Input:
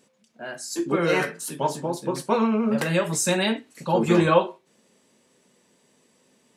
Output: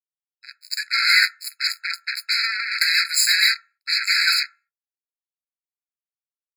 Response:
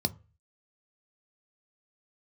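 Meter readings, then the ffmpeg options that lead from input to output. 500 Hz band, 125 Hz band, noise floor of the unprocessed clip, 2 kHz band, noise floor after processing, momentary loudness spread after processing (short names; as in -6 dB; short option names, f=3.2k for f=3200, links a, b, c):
under -40 dB, under -40 dB, -64 dBFS, +11.5 dB, under -85 dBFS, 12 LU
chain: -filter_complex "[0:a]bandreject=f=2.5k:w=12,acrusher=bits=3:mix=0:aa=0.5[a];[1:a]atrim=start_sample=2205,afade=t=out:st=0.3:d=0.01,atrim=end_sample=13671[b];[a][b]afir=irnorm=-1:irlink=0,afftfilt=real='re*eq(mod(floor(b*sr/1024/1300),2),1)':imag='im*eq(mod(floor(b*sr/1024/1300),2),1)':win_size=1024:overlap=0.75,volume=9dB"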